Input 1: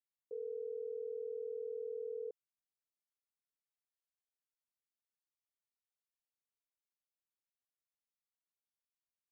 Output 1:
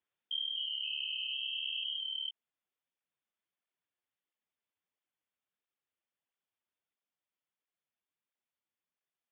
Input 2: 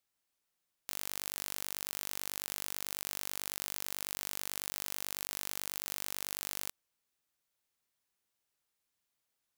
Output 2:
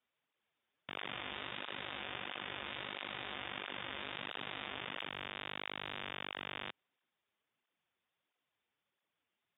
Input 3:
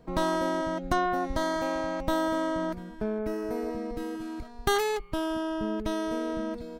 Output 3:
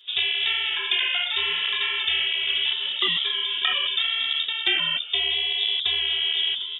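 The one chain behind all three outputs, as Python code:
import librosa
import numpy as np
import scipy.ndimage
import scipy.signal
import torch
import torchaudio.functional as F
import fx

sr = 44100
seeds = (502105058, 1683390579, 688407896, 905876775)

y = fx.echo_pitch(x, sr, ms=343, semitones=6, count=2, db_per_echo=-3.0)
y = fx.rider(y, sr, range_db=10, speed_s=0.5)
y = fx.freq_invert(y, sr, carrier_hz=3600)
y = scipy.signal.sosfilt(scipy.signal.butter(2, 110.0, 'highpass', fs=sr, output='sos'), y)
y = fx.flanger_cancel(y, sr, hz=1.5, depth_ms=7.5)
y = F.gain(torch.from_numpy(y), 6.0).numpy()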